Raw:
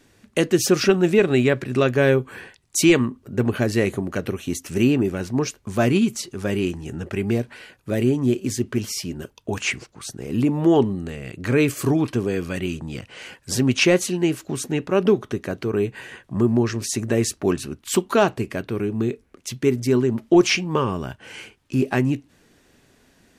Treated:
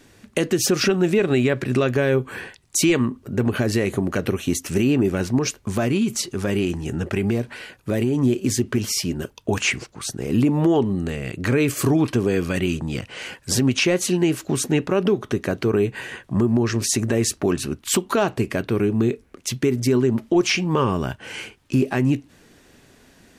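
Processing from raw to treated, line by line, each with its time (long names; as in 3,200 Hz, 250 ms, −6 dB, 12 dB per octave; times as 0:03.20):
0:05.38–0:08.23: downward compressor, threshold −21 dBFS
whole clip: downward compressor 4 to 1, threshold −19 dBFS; boost into a limiter +13.5 dB; level −8.5 dB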